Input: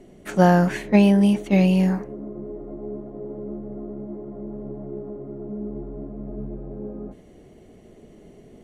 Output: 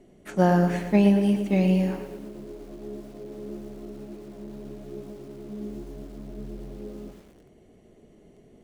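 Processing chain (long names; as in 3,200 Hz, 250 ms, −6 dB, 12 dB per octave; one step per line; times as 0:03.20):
dynamic equaliser 330 Hz, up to +4 dB, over −32 dBFS, Q 0.88
feedback echo at a low word length 114 ms, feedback 55%, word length 7 bits, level −9 dB
level −6.5 dB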